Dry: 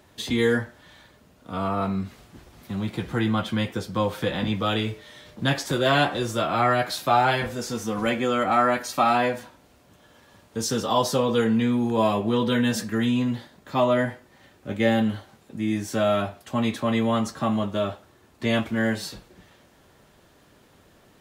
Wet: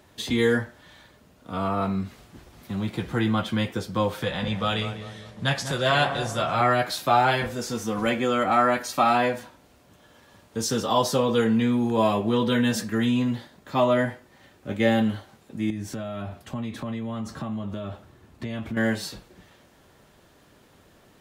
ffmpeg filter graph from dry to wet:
ffmpeg -i in.wav -filter_complex "[0:a]asettb=1/sr,asplit=3[link_01][link_02][link_03];[link_01]atrim=end=4.234[link_04];[link_02]atrim=start=4.23:end=6.61,asetpts=PTS-STARTPTS,afade=type=in:duration=0.004:curve=qsin,afade=type=out:start_time=2.376:duration=0.004:curve=qsin,lowpass=frequency=12000:width=0.5412,lowpass=frequency=12000:width=1.3066,equalizer=frequency=310:width=1.9:gain=-10.5,asplit=2[link_05][link_06];[link_06]adelay=198,lowpass=frequency=1200:poles=1,volume=-8.5dB,asplit=2[link_07][link_08];[link_08]adelay=198,lowpass=frequency=1200:poles=1,volume=0.51,asplit=2[link_09][link_10];[link_10]adelay=198,lowpass=frequency=1200:poles=1,volume=0.51,asplit=2[link_11][link_12];[link_12]adelay=198,lowpass=frequency=1200:poles=1,volume=0.51,asplit=2[link_13][link_14];[link_14]adelay=198,lowpass=frequency=1200:poles=1,volume=0.51,asplit=2[link_15][link_16];[link_16]adelay=198,lowpass=frequency=1200:poles=1,volume=0.51[link_17];[link_05][link_07][link_09][link_11][link_13][link_15][link_17]amix=inputs=7:normalize=0,atrim=end_sample=104958[link_18];[link_03]atrim=start=6.606[link_19];[link_04][link_18]acrossfade=duration=0.004:curve1=hsin:curve2=qsin[link_20];[link_20][link_19]acrossfade=duration=0.004:curve1=qsin:curve2=hsin,asettb=1/sr,asplit=3[link_21][link_22][link_23];[link_21]atrim=end=15.704[link_24];[link_22]atrim=start=15.7:end=18.77,asetpts=PTS-STARTPTS,afade=type=in:duration=0.004:curve=qsin,afade=type=out:start_time=3.066:duration=0.004:curve=qsin,acompressor=threshold=-33dB:ratio=5:attack=3.2:release=140:knee=1:detection=peak,bass=frequency=250:gain=8,treble=frequency=4000:gain=-3[link_25];[link_23]atrim=start=18.766[link_26];[link_24][link_25]acrossfade=duration=0.004:curve1=hsin:curve2=qsin[link_27];[link_27][link_26]acrossfade=duration=0.004:curve1=qsin:curve2=hsin" out.wav

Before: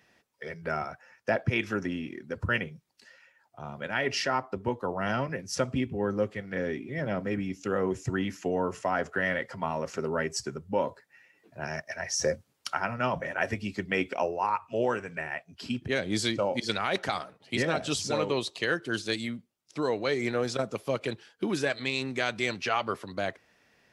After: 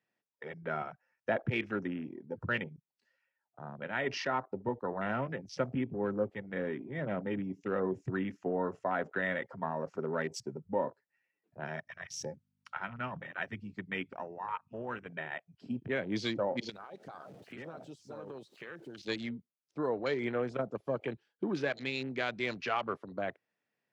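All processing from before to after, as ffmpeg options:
ffmpeg -i in.wav -filter_complex "[0:a]asettb=1/sr,asplit=3[link_01][link_02][link_03];[link_01]atrim=end=11.854[link_04];[link_02]atrim=start=11.85:end=15.06,asetpts=PTS-STARTPTS,afade=type=in:duration=0.004:curve=qsin,afade=type=out:start_time=3.206:duration=0.004:curve=qsin,equalizer=frequency=510:width_type=o:width=1.7:gain=-9,tremolo=f=5.2:d=0.31,aeval=exprs='val(0)+0.00224*(sin(2*PI*50*n/s)+sin(2*PI*2*50*n/s)/2+sin(2*PI*3*50*n/s)/3+sin(2*PI*4*50*n/s)/4+sin(2*PI*5*50*n/s)/5)':channel_layout=same[link_05];[link_03]atrim=start=15.056[link_06];[link_04][link_05]acrossfade=duration=0.004:curve1=hsin:curve2=qsin[link_07];[link_07][link_06]acrossfade=duration=0.004:curve1=qsin:curve2=hsin,asettb=1/sr,asplit=3[link_08][link_09][link_10];[link_08]atrim=end=16.694[link_11];[link_09]atrim=start=16.69:end=19.05,asetpts=PTS-STARTPTS,afade=type=in:duration=0.004:curve=qsin,afade=type=out:start_time=2.356:duration=0.004:curve=qsin,aeval=exprs='val(0)+0.5*0.00891*sgn(val(0))':channel_layout=same,highshelf=frequency=3600:gain=10.5,acompressor=threshold=-37dB:ratio=5:attack=3.2:release=140:knee=1:detection=peak[link_12];[link_10]atrim=start=19.046[link_13];[link_11][link_12]acrossfade=duration=0.004:curve1=hsin:curve2=qsin[link_14];[link_14][link_13]acrossfade=duration=0.004:curve1=qsin:curve2=hsin,highpass=frequency=110:width=0.5412,highpass=frequency=110:width=1.3066,afwtdn=0.0112,lowpass=frequency=3600:poles=1,volume=-4dB" out.wav

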